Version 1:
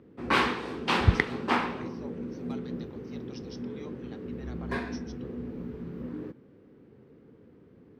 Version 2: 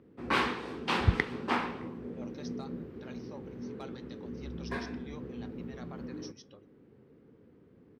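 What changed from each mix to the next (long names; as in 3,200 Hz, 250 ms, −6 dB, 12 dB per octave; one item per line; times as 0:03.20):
speech: entry +1.30 s
background −4.0 dB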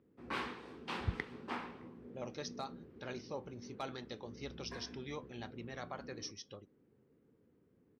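speech +5.0 dB
background −11.5 dB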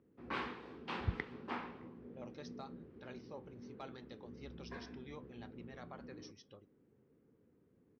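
speech −6.5 dB
master: add high-frequency loss of the air 120 metres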